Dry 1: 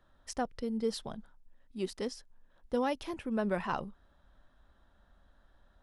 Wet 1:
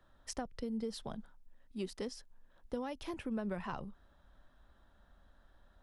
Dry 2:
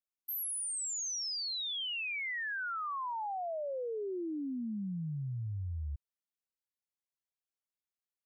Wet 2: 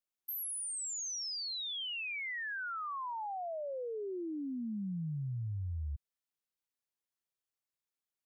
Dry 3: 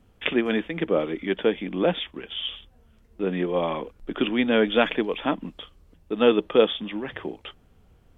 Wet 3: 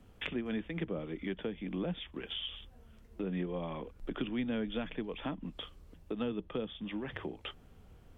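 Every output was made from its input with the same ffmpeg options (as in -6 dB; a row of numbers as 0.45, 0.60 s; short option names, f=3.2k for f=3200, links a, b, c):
-filter_complex "[0:a]acrossover=split=160[a][b];[b]acompressor=threshold=-37dB:ratio=10[c];[a][c]amix=inputs=2:normalize=0"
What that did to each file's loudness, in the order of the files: -6.5, -2.0, -14.0 LU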